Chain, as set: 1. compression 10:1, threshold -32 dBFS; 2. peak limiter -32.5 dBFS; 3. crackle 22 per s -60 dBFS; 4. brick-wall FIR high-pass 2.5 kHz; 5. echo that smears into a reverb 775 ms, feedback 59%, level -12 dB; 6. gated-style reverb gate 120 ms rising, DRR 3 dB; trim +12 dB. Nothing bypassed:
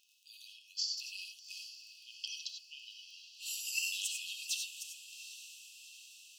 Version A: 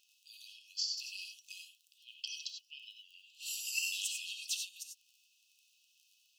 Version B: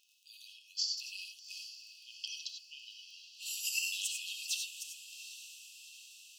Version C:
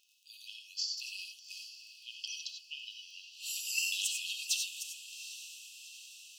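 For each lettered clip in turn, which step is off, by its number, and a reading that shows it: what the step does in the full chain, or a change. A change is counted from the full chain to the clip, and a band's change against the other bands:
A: 5, momentary loudness spread change +4 LU; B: 1, mean gain reduction 3.5 dB; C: 2, mean gain reduction 2.0 dB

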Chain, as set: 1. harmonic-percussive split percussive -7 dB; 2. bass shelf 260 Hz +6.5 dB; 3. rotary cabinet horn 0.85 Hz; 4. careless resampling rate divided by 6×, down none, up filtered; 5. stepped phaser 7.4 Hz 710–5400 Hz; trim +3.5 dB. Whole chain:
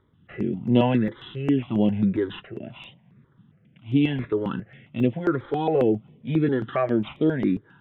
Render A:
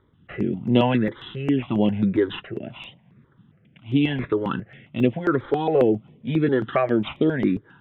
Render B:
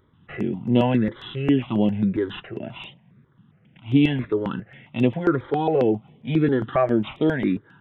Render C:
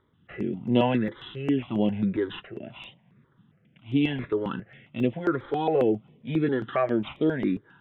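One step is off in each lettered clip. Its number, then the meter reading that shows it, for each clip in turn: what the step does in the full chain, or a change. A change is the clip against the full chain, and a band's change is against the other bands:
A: 1, 2 kHz band +2.5 dB; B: 3, 2 kHz band +2.0 dB; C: 2, 125 Hz band -4.0 dB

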